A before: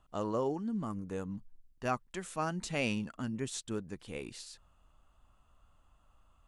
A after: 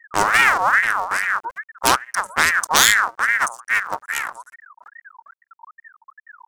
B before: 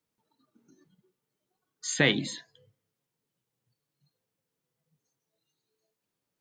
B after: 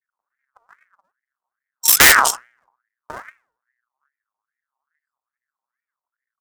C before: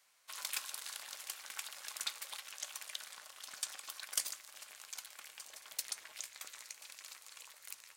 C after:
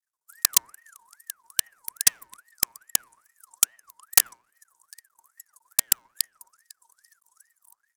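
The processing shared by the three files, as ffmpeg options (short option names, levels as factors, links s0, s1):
-filter_complex "[0:a]adynamicequalizer=threshold=0.00224:dfrequency=550:dqfactor=3.4:tfrequency=550:tqfactor=3.4:attack=5:release=100:ratio=0.375:range=2:mode=boostabove:tftype=bell,acrossover=split=240|510|7400[s0][s1][s2][s3];[s1]aecho=1:1:1097:0.0944[s4];[s2]aeval=exprs='0.316*(cos(1*acos(clip(val(0)/0.316,-1,1)))-cos(1*PI/2))+0.0891*(cos(3*acos(clip(val(0)/0.316,-1,1)))-cos(3*PI/2))+0.0631*(cos(6*acos(clip(val(0)/0.316,-1,1)))-cos(6*PI/2))+0.00398*(cos(7*acos(clip(val(0)/0.316,-1,1)))-cos(7*PI/2))+0.00447*(cos(8*acos(clip(val(0)/0.316,-1,1)))-cos(8*PI/2))':c=same[s5];[s3]acompressor=threshold=0.00112:ratio=12[s6];[s0][s4][s5][s6]amix=inputs=4:normalize=0,anlmdn=0.00631,bandreject=f=119.9:t=h:w=4,bandreject=f=239.8:t=h:w=4,bandreject=f=359.7:t=h:w=4,bandreject=f=479.6:t=h:w=4,bandreject=f=599.5:t=h:w=4,bandreject=f=719.4:t=h:w=4,bandreject=f=839.3:t=h:w=4,bandreject=f=959.2:t=h:w=4,bandreject=f=1079.1:t=h:w=4,bandreject=f=1199:t=h:w=4,bandreject=f=1318.9:t=h:w=4,aeval=exprs='max(val(0),0)':c=same,aexciter=amount=7:drive=6.1:freq=3800,acontrast=62,aeval=exprs='1*sin(PI/2*6.31*val(0)/1)':c=same,aeval=exprs='val(0)*sin(2*PI*1400*n/s+1400*0.35/2.4*sin(2*PI*2.4*n/s))':c=same,volume=0.891"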